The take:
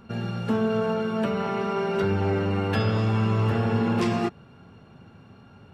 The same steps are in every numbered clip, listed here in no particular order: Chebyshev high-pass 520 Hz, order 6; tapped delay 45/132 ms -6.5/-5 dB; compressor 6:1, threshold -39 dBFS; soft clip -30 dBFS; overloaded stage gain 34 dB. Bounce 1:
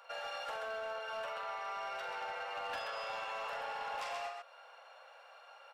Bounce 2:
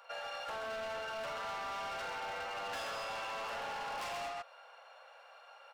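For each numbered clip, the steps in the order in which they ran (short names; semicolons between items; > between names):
Chebyshev high-pass > compressor > tapped delay > overloaded stage > soft clip; Chebyshev high-pass > soft clip > tapped delay > overloaded stage > compressor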